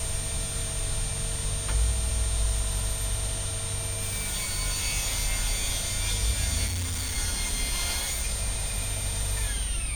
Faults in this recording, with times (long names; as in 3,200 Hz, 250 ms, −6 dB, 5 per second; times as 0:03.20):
surface crackle 39 per second −31 dBFS
whistle 8,900 Hz −33 dBFS
0:06.66–0:07.18: clipping −27 dBFS